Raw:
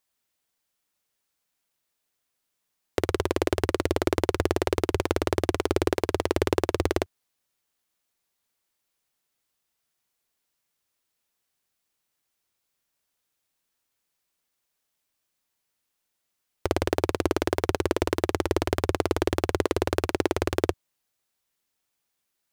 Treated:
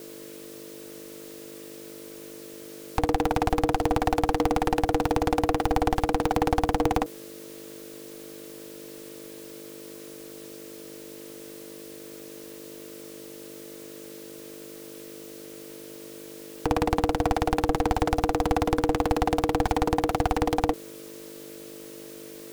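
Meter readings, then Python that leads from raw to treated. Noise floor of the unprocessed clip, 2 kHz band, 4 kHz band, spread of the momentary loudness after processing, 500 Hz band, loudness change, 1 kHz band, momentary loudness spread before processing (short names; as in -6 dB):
-80 dBFS, -0.5 dB, -1.0 dB, 16 LU, -1.0 dB, +1.0 dB, +7.0 dB, 3 LU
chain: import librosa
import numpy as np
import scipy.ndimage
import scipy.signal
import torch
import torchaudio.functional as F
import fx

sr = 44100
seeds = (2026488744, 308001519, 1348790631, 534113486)

y = fx.power_curve(x, sr, exponent=0.5)
y = fx.add_hum(y, sr, base_hz=50, snr_db=15)
y = y * np.sin(2.0 * np.pi * 390.0 * np.arange(len(y)) / sr)
y = F.gain(torch.from_numpy(y), -1.5).numpy()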